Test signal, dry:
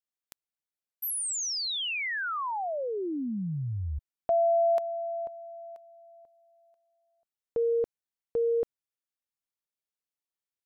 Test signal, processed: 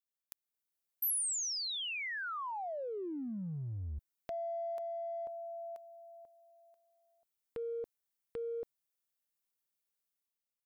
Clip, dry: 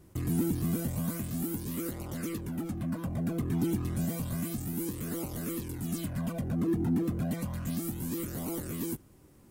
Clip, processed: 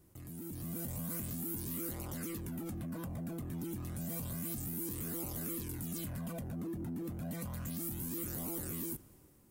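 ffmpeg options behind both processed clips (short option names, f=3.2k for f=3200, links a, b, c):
-af "acompressor=threshold=-38dB:ratio=6:attack=0.83:release=26:knee=1:detection=peak,highshelf=f=9.2k:g=10.5,dynaudnorm=f=120:g=9:m=8dB,volume=-8.5dB"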